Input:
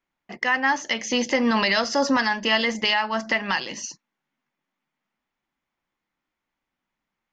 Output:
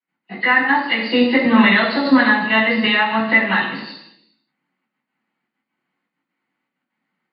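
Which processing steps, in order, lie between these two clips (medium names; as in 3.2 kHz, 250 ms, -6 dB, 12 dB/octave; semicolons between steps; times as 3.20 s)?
knee-point frequency compression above 2.6 kHz 1.5:1; resonant low shelf 130 Hz -11.5 dB, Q 1.5; trance gate ".x.xxxxx" 198 bpm -12 dB; reverberation RT60 0.85 s, pre-delay 3 ms, DRR -11 dB; trim -14 dB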